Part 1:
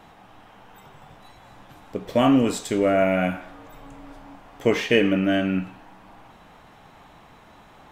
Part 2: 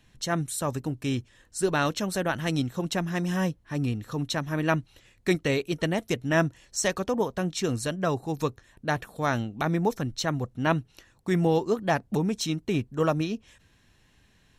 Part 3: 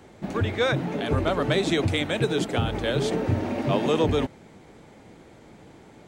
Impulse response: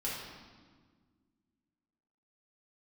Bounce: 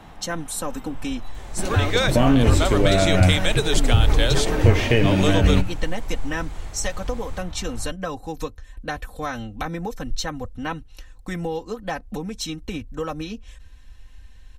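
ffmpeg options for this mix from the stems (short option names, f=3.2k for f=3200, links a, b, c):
-filter_complex "[0:a]lowshelf=f=160:g=10.5,volume=2.5dB[a];[1:a]aecho=1:1:3.9:0.83,acompressor=threshold=-27dB:ratio=3,volume=2dB[b];[2:a]highshelf=f=3.2k:g=11.5,adelay=1350,volume=2.5dB[c];[a][b][c]amix=inputs=3:normalize=0,acrossover=split=210[d][e];[e]acompressor=threshold=-16dB:ratio=3[f];[d][f]amix=inputs=2:normalize=0,asubboost=boost=11:cutoff=64"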